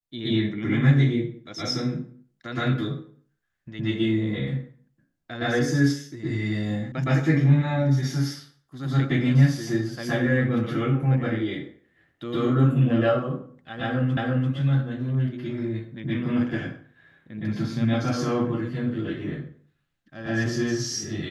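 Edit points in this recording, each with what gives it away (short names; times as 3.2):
6.92 sound cut off
14.17 repeat of the last 0.34 s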